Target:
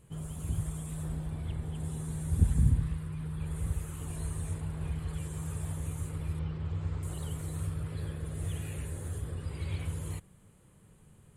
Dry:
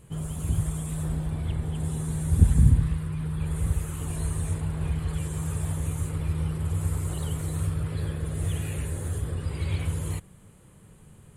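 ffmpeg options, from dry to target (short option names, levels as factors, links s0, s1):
-filter_complex "[0:a]asettb=1/sr,asplit=3[s0][s1][s2];[s0]atrim=end=6.394[s3];[s1]atrim=start=6.39:end=7.03,asetpts=PTS-STARTPTS,afade=t=in:d=0.004:c=qsin,afade=t=out:st=0.636:d=0.004:c=qsin,lowpass=f=5200:w=0.5412,lowpass=f=5200:w=1.3066[s4];[s2]atrim=start=7.026[s5];[s3][s4]acrossfade=d=0.004:c1=hsin:c2=qsin[s6];[s6][s5]acrossfade=d=0.004:c1=qsin:c2=hsin,volume=0.447"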